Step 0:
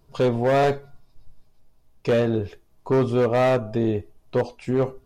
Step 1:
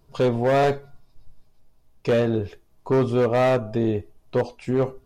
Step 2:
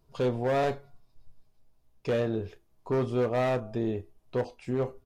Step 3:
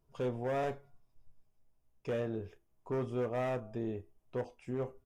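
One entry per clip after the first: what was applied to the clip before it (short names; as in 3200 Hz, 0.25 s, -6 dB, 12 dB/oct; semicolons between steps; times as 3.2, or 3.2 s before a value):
nothing audible
doubler 32 ms -14 dB; gain -7.5 dB
bell 4200 Hz -12.5 dB 0.31 oct; gain -7.5 dB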